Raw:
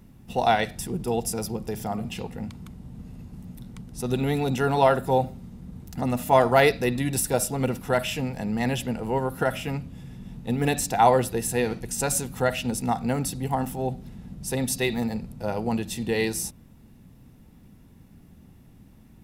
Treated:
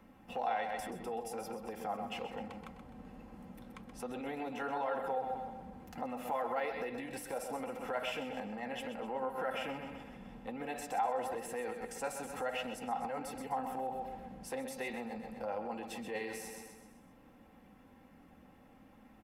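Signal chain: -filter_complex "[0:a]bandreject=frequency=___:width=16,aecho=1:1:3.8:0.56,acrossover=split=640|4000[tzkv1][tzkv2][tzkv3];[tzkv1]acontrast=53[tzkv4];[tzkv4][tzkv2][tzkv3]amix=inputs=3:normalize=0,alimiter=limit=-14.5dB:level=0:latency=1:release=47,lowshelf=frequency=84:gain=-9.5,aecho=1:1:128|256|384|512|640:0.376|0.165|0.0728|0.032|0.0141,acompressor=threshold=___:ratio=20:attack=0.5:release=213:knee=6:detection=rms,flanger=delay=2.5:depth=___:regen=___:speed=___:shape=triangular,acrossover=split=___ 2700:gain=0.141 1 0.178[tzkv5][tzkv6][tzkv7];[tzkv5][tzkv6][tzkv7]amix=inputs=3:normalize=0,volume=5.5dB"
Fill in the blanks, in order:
3800, -25dB, 6.5, -77, 1.2, 540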